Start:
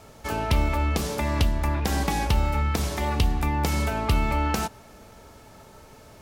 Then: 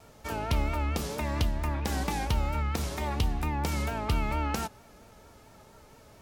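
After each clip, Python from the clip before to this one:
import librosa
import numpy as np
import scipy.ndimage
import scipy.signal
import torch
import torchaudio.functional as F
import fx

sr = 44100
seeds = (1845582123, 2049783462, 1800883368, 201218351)

y = fx.vibrato(x, sr, rate_hz=4.4, depth_cents=71.0)
y = y * 10.0 ** (-5.5 / 20.0)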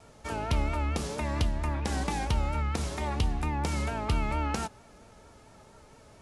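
y = scipy.signal.sosfilt(scipy.signal.cheby1(5, 1.0, 11000.0, 'lowpass', fs=sr, output='sos'), x)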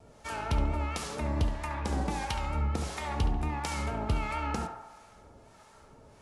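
y = fx.harmonic_tremolo(x, sr, hz=1.5, depth_pct=70, crossover_hz=750.0)
y = fx.echo_banded(y, sr, ms=70, feedback_pct=69, hz=1000.0, wet_db=-4)
y = y * 10.0 ** (1.0 / 20.0)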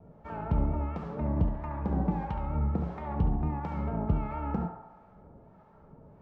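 y = scipy.signal.sosfilt(scipy.signal.butter(2, 1000.0, 'lowpass', fs=sr, output='sos'), x)
y = fx.peak_eq(y, sr, hz=170.0, db=11.0, octaves=0.54)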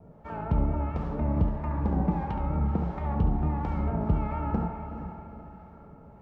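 y = fx.echo_diffused(x, sr, ms=452, feedback_pct=41, wet_db=-9)
y = y * 10.0 ** (2.0 / 20.0)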